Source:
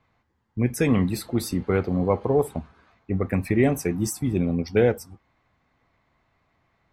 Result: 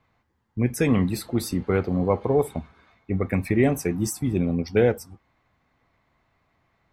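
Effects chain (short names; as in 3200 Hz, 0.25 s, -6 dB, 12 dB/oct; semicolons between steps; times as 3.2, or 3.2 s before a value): 2.21–3.49 small resonant body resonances 2200/3600 Hz, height 14 dB -> 11 dB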